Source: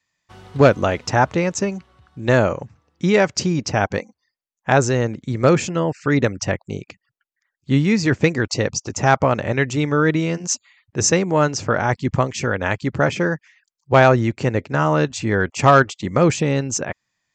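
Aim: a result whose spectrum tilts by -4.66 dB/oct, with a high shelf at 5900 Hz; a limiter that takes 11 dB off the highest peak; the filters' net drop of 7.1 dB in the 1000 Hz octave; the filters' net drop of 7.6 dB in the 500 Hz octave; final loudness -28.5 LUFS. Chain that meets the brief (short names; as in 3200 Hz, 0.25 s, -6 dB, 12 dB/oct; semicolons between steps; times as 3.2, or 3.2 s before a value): bell 500 Hz -7.5 dB; bell 1000 Hz -7.5 dB; high shelf 5900 Hz +4 dB; gain -3 dB; limiter -17 dBFS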